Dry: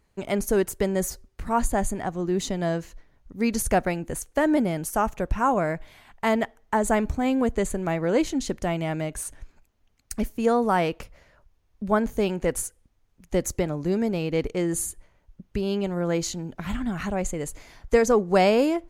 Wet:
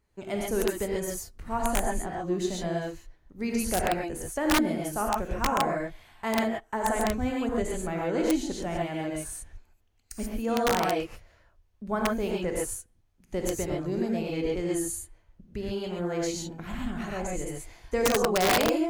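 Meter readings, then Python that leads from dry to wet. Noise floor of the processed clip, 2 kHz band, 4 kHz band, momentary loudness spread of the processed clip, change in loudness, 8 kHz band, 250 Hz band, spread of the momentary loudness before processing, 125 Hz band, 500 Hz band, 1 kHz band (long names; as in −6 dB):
−65 dBFS, −1.5 dB, +2.0 dB, 12 LU, −4.0 dB, −2.0 dB, −4.0 dB, 10 LU, −5.5 dB, −4.5 dB, −3.0 dB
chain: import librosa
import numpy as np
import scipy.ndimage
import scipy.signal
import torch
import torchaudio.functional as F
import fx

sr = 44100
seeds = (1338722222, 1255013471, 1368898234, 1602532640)

y = fx.rev_gated(x, sr, seeds[0], gate_ms=160, shape='rising', drr_db=-2.5)
y = (np.mod(10.0 ** (8.0 / 20.0) * y + 1.0, 2.0) - 1.0) / 10.0 ** (8.0 / 20.0)
y = y * librosa.db_to_amplitude(-8.0)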